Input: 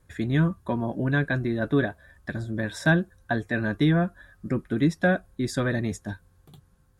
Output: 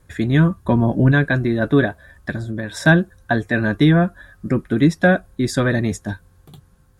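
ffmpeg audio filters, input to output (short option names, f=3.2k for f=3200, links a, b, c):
-filter_complex "[0:a]asettb=1/sr,asplit=3[a][b][c];[a]atrim=end=0.654[d];[b]atrim=start=0.65:end=1.12,asetpts=PTS-STARTPTS,afade=t=in:d=0.004:c=qsin,afade=t=out:st=0.466:d=0.004:c=qsin,lowshelf=f=200:g=9[e];[c]atrim=start=1.116[f];[d][e]acrossfade=d=0.004:c1=hsin:c2=qsin[g];[g][f]acrossfade=d=0.004:c1=qsin:c2=hsin,asettb=1/sr,asplit=3[h][i][j];[h]atrim=end=2.324[k];[i]atrim=start=2.32:end=2.77,asetpts=PTS-STARTPTS,afade=t=in:d=0.004:c=qsin,afade=t=out:st=0.446:d=0.004:c=qsin,acompressor=threshold=-30dB:ratio=6[l];[j]atrim=start=2.766[m];[k][l]acrossfade=d=0.004:c1=hsin:c2=qsin[n];[n][m]acrossfade=d=0.004:c1=qsin:c2=hsin,volume=7.5dB"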